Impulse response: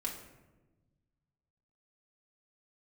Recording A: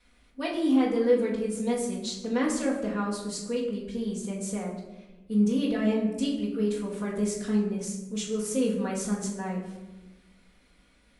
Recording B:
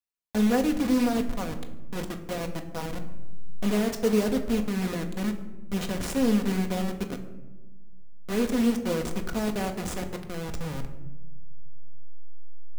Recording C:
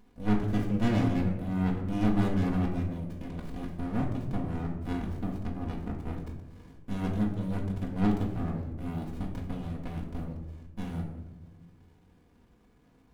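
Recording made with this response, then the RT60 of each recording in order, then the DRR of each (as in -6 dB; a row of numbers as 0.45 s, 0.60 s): C; 1.1 s, 1.2 s, 1.1 s; -9.0 dB, 4.0 dB, -2.0 dB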